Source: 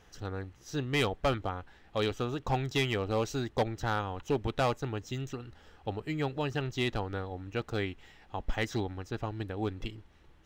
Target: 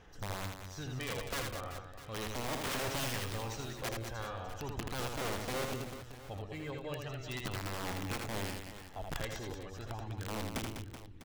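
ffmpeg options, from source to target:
ffmpeg -i in.wav -af "alimiter=level_in=4dB:limit=-24dB:level=0:latency=1:release=20,volume=-4dB,aphaser=in_gain=1:out_gain=1:delay=1.9:decay=0.6:speed=0.4:type=sinusoidal,atempo=0.93,aeval=exprs='(mod(20*val(0)+1,2)-1)/20':channel_layout=same,aecho=1:1:80|200|380|650|1055:0.631|0.398|0.251|0.158|0.1,volume=-6dB" out.wav

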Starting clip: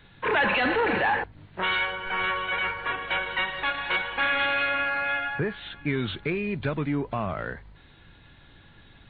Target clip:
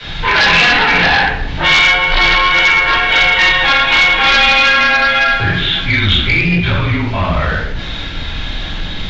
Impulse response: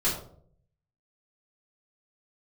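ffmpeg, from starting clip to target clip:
-filter_complex "[0:a]aeval=exprs='val(0)+0.5*0.01*sgn(val(0))':channel_layout=same,acrossover=split=170|870[link_01][link_02][link_03];[link_02]acompressor=threshold=-40dB:ratio=6[link_04];[link_01][link_04][link_03]amix=inputs=3:normalize=0[link_05];[1:a]atrim=start_sample=2205,asetrate=23373,aresample=44100[link_06];[link_05][link_06]afir=irnorm=-1:irlink=0,afreqshift=-31,aresample=16000,aeval=exprs='1.26*sin(PI/2*2.82*val(0)/1.26)':channel_layout=same,aresample=44100,lowpass=frequency=3800:width_type=q:width=2.4,volume=-10.5dB"

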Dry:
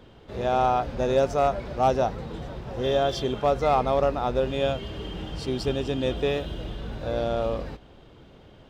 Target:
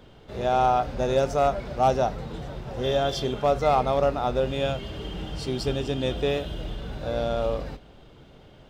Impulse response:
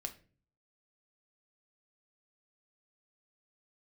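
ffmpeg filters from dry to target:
-filter_complex "[0:a]asplit=2[link_01][link_02];[1:a]atrim=start_sample=2205,highshelf=frequency=4200:gain=9[link_03];[link_02][link_03]afir=irnorm=-1:irlink=0,volume=-3.5dB[link_04];[link_01][link_04]amix=inputs=2:normalize=0,volume=-3.5dB"

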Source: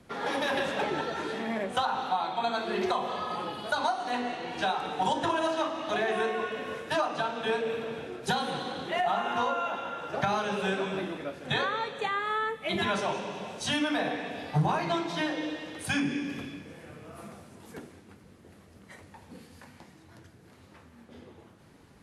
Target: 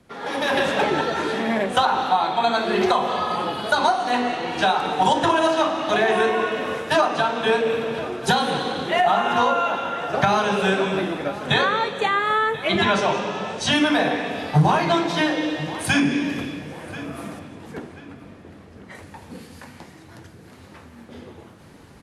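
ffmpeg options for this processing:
ffmpeg -i in.wav -filter_complex "[0:a]asettb=1/sr,asplit=3[link_01][link_02][link_03];[link_01]atrim=end=17.394[link_04];[link_02]atrim=start=17.39:end=18.95,asetpts=PTS-STARTPTS,afade=type=in:duration=0.004:curve=qsin,afade=type=out:start_time=1.556:duration=0.004:curve=qsin,aemphasis=mode=reproduction:type=50kf[link_05];[link_03]atrim=start=18.946[link_06];[link_04][link_05]acrossfade=duration=0.004:curve1=hsin:curve2=qsin[link_07];[link_07][link_06]acrossfade=duration=0.004:curve1=qsin:curve2=hsin,asplit=2[link_08][link_09];[link_09]adelay=1034,lowpass=frequency=3700:poles=1,volume=-15.5dB,asplit=2[link_10][link_11];[link_11]adelay=1034,lowpass=frequency=3700:poles=1,volume=0.33,asplit=2[link_12][link_13];[link_13]adelay=1034,lowpass=frequency=3700:poles=1,volume=0.33[link_14];[link_08][link_10][link_12][link_14]amix=inputs=4:normalize=0,dynaudnorm=framelen=120:gausssize=7:maxgain=9.5dB,asettb=1/sr,asplit=3[link_15][link_16][link_17];[link_15]atrim=end=12.684[link_18];[link_16]atrim=start=12.68:end=13.76,asetpts=PTS-STARTPTS,afade=type=in:duration=0.004:curve=qsin,afade=type=out:start_time=1.076:duration=0.004:curve=qsin,lowpass=7400[link_19];[link_17]atrim=start=13.756[link_20];[link_18][link_19]acrossfade=duration=0.004:curve1=hsin:curve2=qsin[link_21];[link_21][link_20]acrossfade=duration=0.004:curve1=qsin:curve2=hsin" out.wav

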